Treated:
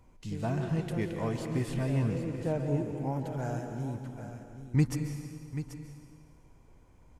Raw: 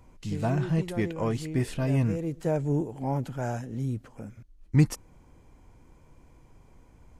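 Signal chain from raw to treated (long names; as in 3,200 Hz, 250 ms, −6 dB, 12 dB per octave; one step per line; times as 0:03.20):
0:01.79–0:02.68: low-pass filter 6,000 Hz
on a send: single-tap delay 785 ms −11 dB
on the sum: dense smooth reverb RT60 1.8 s, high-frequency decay 0.95×, pre-delay 120 ms, DRR 5.5 dB
level −5 dB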